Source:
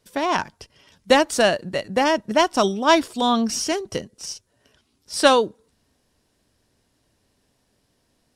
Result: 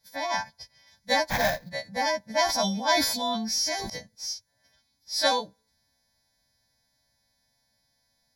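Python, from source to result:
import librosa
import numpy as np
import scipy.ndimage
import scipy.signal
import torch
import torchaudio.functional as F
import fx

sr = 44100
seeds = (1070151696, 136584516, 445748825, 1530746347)

y = fx.freq_snap(x, sr, grid_st=2)
y = fx.sample_hold(y, sr, seeds[0], rate_hz=4500.0, jitter_pct=20, at=(1.29, 1.69), fade=0.02)
y = fx.fixed_phaser(y, sr, hz=1900.0, stages=8)
y = fx.sustainer(y, sr, db_per_s=44.0, at=(2.34, 3.9))
y = y * 10.0 ** (-6.0 / 20.0)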